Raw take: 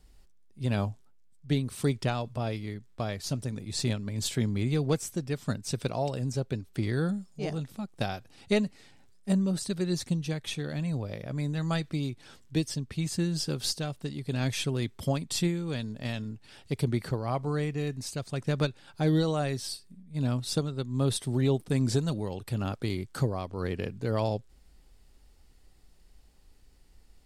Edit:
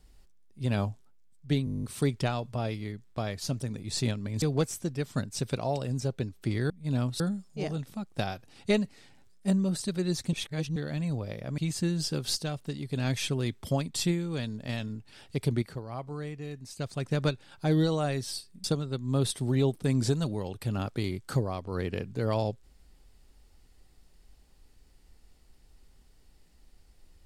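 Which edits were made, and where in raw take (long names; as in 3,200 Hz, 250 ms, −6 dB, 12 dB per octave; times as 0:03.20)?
0:01.65: stutter 0.02 s, 10 plays
0:04.24–0:04.74: remove
0:10.15–0:10.58: reverse
0:11.40–0:12.94: remove
0:16.98–0:18.15: clip gain −7.5 dB
0:20.00–0:20.50: move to 0:07.02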